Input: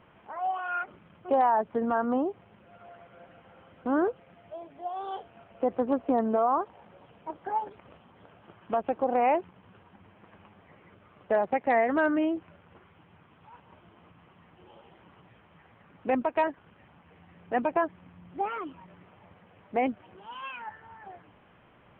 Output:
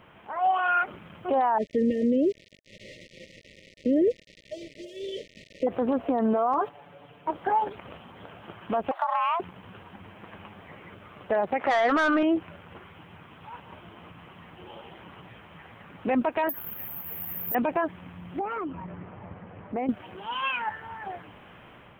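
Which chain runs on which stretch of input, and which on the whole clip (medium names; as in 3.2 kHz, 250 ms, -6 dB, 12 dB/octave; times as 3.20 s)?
1.58–5.67 s: small samples zeroed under -48.5 dBFS + brick-wall FIR band-stop 640–1800 Hz + distance through air 130 m
6.53–7.28 s: gate -47 dBFS, range -8 dB + comb 6.9 ms, depth 92% + compression 2:1, threshold -29 dBFS
8.91–9.40 s: high-pass 260 Hz 24 dB/octave + compression 10:1, threshold -31 dBFS + frequency shift +340 Hz
11.59–12.23 s: peaking EQ 1.3 kHz +9 dB 0.35 oct + overdrive pedal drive 16 dB, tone 2 kHz, clips at -11.5 dBFS
16.49–17.55 s: compression 3:1, threshold -44 dBFS + careless resampling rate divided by 3×, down none, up zero stuff
18.39–19.89 s: low-pass 1.8 kHz + bass shelf 400 Hz +6.5 dB + compression 3:1, threshold -40 dBFS
whole clip: level rider gain up to 5 dB; treble shelf 3 kHz +8 dB; peak limiter -20 dBFS; trim +3.5 dB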